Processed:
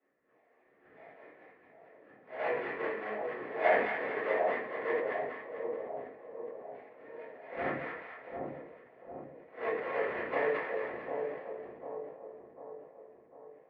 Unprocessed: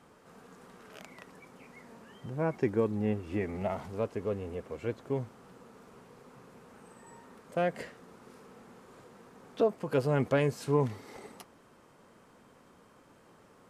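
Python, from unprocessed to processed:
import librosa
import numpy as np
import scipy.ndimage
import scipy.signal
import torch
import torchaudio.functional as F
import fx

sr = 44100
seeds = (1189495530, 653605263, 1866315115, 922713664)

y = fx.spec_swells(x, sr, rise_s=0.31)
y = fx.noise_reduce_blind(y, sr, reduce_db=13)
y = fx.rider(y, sr, range_db=10, speed_s=2.0)
y = fx.wah_lfo(y, sr, hz=1.6, low_hz=680.0, high_hz=1700.0, q=4.3)
y = fx.sample_hold(y, sr, seeds[0], rate_hz=1500.0, jitter_pct=20)
y = fx.cabinet(y, sr, low_hz=340.0, low_slope=12, high_hz=2200.0, hz=(450.0, 870.0, 1800.0), db=(5, -6, 10))
y = fx.echo_split(y, sr, split_hz=910.0, low_ms=748, high_ms=222, feedback_pct=52, wet_db=-4)
y = fx.room_shoebox(y, sr, seeds[1], volume_m3=49.0, walls='mixed', distance_m=2.9)
y = fx.sustainer(y, sr, db_per_s=68.0)
y = y * 10.0 ** (-4.5 / 20.0)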